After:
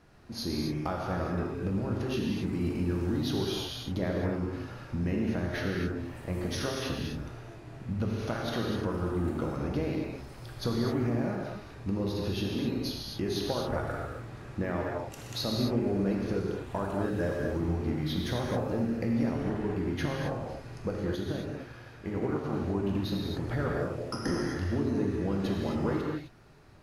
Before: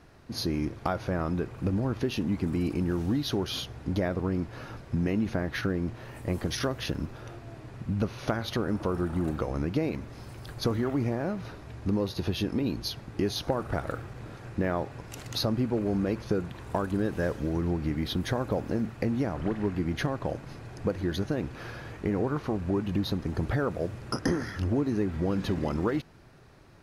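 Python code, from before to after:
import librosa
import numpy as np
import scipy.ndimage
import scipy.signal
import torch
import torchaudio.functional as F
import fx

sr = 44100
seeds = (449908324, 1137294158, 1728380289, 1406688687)

y = fx.rev_gated(x, sr, seeds[0], gate_ms=290, shape='flat', drr_db=-2.0)
y = fx.upward_expand(y, sr, threshold_db=-34.0, expansion=1.5, at=(21.14, 22.53))
y = y * 10.0 ** (-5.5 / 20.0)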